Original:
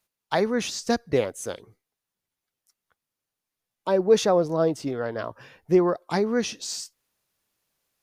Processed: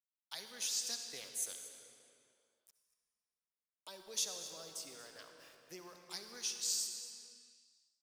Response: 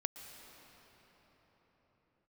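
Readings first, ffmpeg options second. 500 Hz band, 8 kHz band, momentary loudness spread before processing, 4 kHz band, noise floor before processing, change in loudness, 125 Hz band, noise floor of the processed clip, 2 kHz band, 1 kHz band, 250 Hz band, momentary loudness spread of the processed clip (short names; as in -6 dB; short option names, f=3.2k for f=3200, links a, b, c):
-32.5 dB, -1.5 dB, 15 LU, -6.0 dB, under -85 dBFS, -15.0 dB, -34.5 dB, under -85 dBFS, -18.5 dB, -27.0 dB, -34.0 dB, 20 LU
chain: -filter_complex "[0:a]aderivative,acrossover=split=200|3000[a][b][c];[b]acompressor=threshold=-54dB:ratio=3[d];[a][d][c]amix=inputs=3:normalize=0,aeval=exprs='val(0)*gte(abs(val(0)),0.00106)':c=same,aecho=1:1:234:0.158[e];[1:a]atrim=start_sample=2205,asetrate=83790,aresample=44100[f];[e][f]afir=irnorm=-1:irlink=0,volume=5.5dB"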